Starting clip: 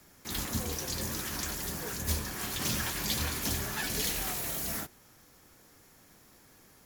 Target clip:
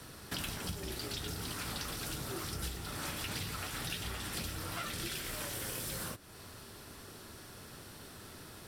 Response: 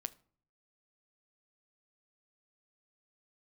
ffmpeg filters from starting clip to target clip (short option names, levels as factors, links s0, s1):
-af "equalizer=f=125:t=o:w=1:g=7,equalizer=f=500:t=o:w=1:g=6,equalizer=f=2000:t=o:w=1:g=4,equalizer=f=4000:t=o:w=1:g=4,acompressor=threshold=0.00794:ratio=12,asetrate=34839,aresample=44100,volume=1.88"